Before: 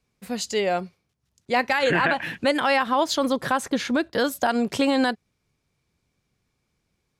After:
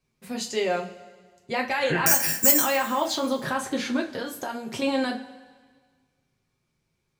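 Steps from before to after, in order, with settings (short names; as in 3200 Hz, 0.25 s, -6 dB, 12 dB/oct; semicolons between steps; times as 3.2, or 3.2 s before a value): limiter -14 dBFS, peak gain reduction 3 dB; 2.06–2.62 careless resampling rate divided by 6×, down filtered, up zero stuff; 4.04–4.82 compressor, threshold -26 dBFS, peak gain reduction 7 dB; two-slope reverb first 0.25 s, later 1.6 s, from -18 dB, DRR 0 dB; gain -4.5 dB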